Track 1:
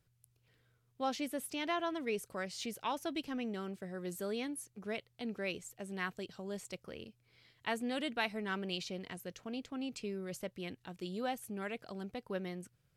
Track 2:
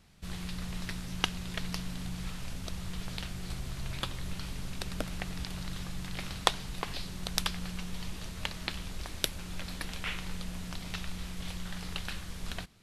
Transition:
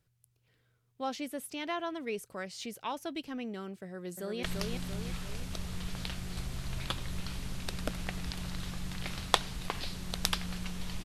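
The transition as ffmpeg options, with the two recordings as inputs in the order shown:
-filter_complex "[0:a]apad=whole_dur=11.04,atrim=end=11.04,atrim=end=4.432[a];[1:a]atrim=start=1.558:end=8.17[b];[a][b]acrossfade=d=0.004:c1=hsin:c2=hsin,asplit=2[c][d];[d]afade=t=in:st=3.83:d=0.01,afade=t=out:st=4.43:d=0.01,aecho=0:1:340|680|1020|1360|1700|2040|2380:0.707946|0.353973|0.176986|0.0884932|0.0442466|0.0221233|0.0110617[e];[c][e]amix=inputs=2:normalize=0"

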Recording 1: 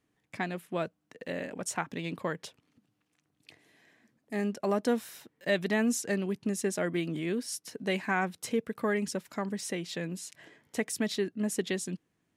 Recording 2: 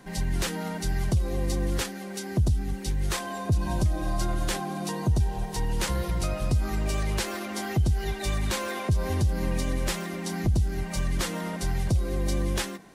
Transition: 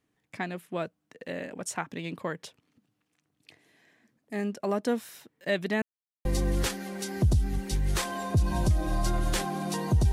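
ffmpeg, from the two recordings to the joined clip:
-filter_complex "[0:a]apad=whole_dur=10.12,atrim=end=10.12,asplit=2[a][b];[a]atrim=end=5.82,asetpts=PTS-STARTPTS,afade=t=out:st=5.816:d=0.004:c=hsin[c];[b]atrim=start=5.82:end=6.25,asetpts=PTS-STARTPTS,volume=0[d];[1:a]atrim=start=1.4:end=5.27,asetpts=PTS-STARTPTS,afade=t=in:d=0.004:c=hsin[e];[c][d][e]concat=n=3:v=0:a=1"

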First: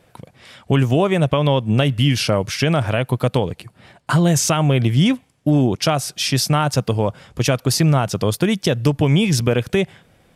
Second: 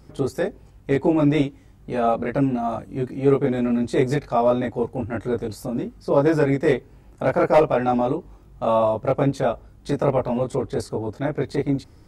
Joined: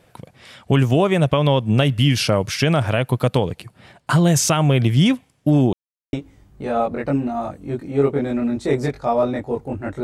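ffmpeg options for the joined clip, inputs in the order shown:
-filter_complex "[0:a]apad=whole_dur=10.03,atrim=end=10.03,asplit=2[a][b];[a]atrim=end=5.73,asetpts=PTS-STARTPTS,afade=t=out:st=5.726:d=0.004:c=hsin[c];[b]atrim=start=5.73:end=6.13,asetpts=PTS-STARTPTS,volume=0[d];[1:a]atrim=start=1.41:end=5.31,asetpts=PTS-STARTPTS,afade=t=in:d=0.004:c=hsin[e];[c][d][e]concat=n=3:v=0:a=1"

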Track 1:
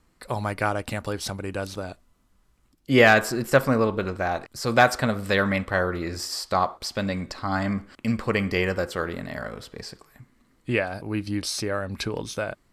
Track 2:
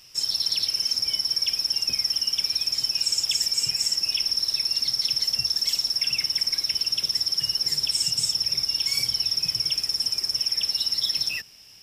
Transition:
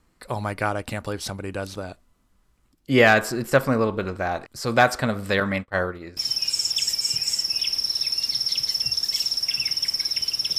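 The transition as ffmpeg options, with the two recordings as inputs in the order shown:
-filter_complex "[0:a]asettb=1/sr,asplit=3[a][b][c];[a]atrim=end=5.404[d];[b]atrim=start=5.4:end=6.17,asetpts=PTS-STARTPTS,afade=t=in:d=0.004:c=qsin,afade=t=out:st=0.766:d=0.004:c=qsin,agate=range=-33dB:threshold=-23dB:ratio=3:release=100:detection=peak[e];[c]atrim=start=6.166[f];[d][e]acrossfade=d=0.004:c1=hsin:c2=qsin[g];[g][f]acrossfade=d=0.004:c1=qsin:c2=hsin,apad=whole_dur=10.58,atrim=end=10.58,atrim=end=6.172[h];[1:a]atrim=start=2.698:end=7.11[i];[h][i]acrossfade=d=0.004:c1=hsin:c2=hsin"

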